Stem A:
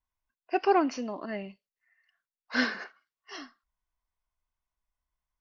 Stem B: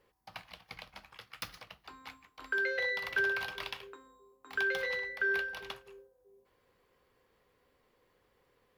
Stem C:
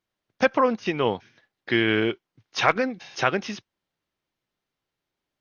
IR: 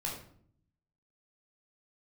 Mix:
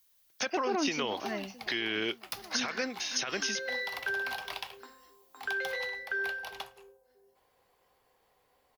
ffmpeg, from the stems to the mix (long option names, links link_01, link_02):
-filter_complex "[0:a]volume=-2dB,asplit=2[link_01][link_02];[link_02]volume=-17.5dB[link_03];[1:a]equalizer=frequency=770:width=2.2:gain=13.5,adelay=900,volume=-5dB,asplit=2[link_04][link_05];[link_05]volume=-20dB[link_06];[2:a]highpass=frequency=660:poles=1,aemphasis=mode=production:type=50fm,alimiter=limit=-10.5dB:level=0:latency=1:release=199,volume=0.5dB[link_07];[link_01][link_07]amix=inputs=2:normalize=0,alimiter=limit=-19dB:level=0:latency=1:release=28,volume=0dB[link_08];[3:a]atrim=start_sample=2205[link_09];[link_06][link_09]afir=irnorm=-1:irlink=0[link_10];[link_03]aecho=0:1:564|1128|1692|2256|2820|3384|3948|4512:1|0.55|0.303|0.166|0.0915|0.0503|0.0277|0.0152[link_11];[link_04][link_08][link_10][link_11]amix=inputs=4:normalize=0,highshelf=frequency=3200:gain=11.5,acrossover=split=390[link_12][link_13];[link_13]acompressor=threshold=-30dB:ratio=6[link_14];[link_12][link_14]amix=inputs=2:normalize=0"